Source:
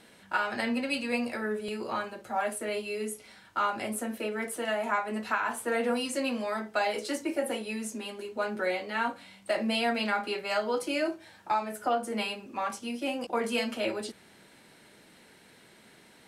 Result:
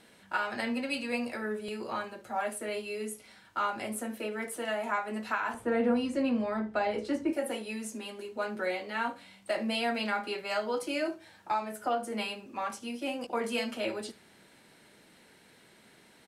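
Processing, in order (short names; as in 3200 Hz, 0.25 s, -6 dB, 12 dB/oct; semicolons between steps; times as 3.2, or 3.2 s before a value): 5.54–7.33 RIAA curve playback; echo 74 ms -21.5 dB; gain -2.5 dB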